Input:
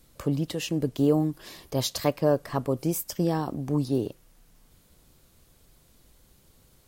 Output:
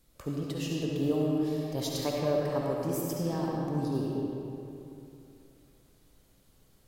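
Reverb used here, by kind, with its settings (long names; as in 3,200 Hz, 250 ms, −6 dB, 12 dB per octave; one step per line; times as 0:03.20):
comb and all-pass reverb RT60 2.9 s, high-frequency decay 0.65×, pre-delay 30 ms, DRR −3 dB
level −8.5 dB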